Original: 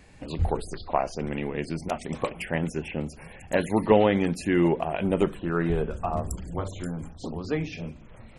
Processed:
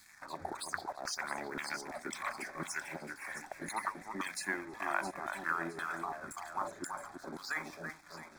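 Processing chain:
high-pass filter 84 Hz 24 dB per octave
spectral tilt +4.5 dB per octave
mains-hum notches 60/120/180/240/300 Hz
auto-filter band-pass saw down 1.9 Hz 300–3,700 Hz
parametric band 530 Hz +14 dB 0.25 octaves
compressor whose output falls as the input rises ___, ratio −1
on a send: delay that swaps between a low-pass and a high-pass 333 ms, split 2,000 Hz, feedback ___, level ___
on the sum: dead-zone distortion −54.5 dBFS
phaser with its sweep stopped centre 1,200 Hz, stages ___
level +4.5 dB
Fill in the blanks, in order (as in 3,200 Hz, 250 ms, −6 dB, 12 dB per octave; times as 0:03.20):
−39 dBFS, 57%, −5.5 dB, 4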